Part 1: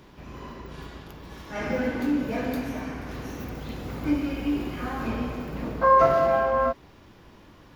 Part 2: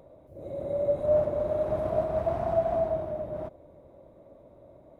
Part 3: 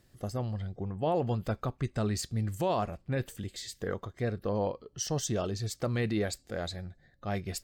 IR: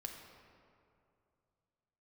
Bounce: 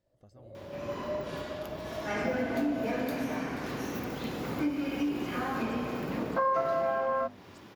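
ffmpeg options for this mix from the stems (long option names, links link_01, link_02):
-filter_complex "[0:a]highpass=140,bandreject=frequency=50:width_type=h:width=6,bandreject=frequency=100:width_type=h:width=6,bandreject=frequency=150:width_type=h:width=6,bandreject=frequency=200:width_type=h:width=6,bandreject=frequency=250:width_type=h:width=6,acompressor=threshold=-32dB:ratio=3,adelay=550,volume=2.5dB[link_01];[1:a]agate=range=-33dB:threshold=-44dB:ratio=3:detection=peak,volume=-12.5dB[link_02];[2:a]equalizer=frequency=12000:width=0.88:gain=-11.5,alimiter=level_in=3.5dB:limit=-24dB:level=0:latency=1:release=456,volume=-3.5dB,volume=-18dB[link_03];[link_01][link_02][link_03]amix=inputs=3:normalize=0"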